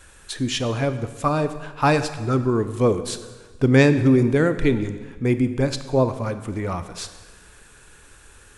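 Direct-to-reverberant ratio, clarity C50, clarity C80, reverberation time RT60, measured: 10.5 dB, 12.0 dB, 13.0 dB, 1.4 s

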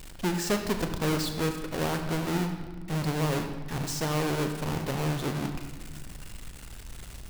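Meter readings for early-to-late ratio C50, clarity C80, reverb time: 7.0 dB, 8.5 dB, 1.6 s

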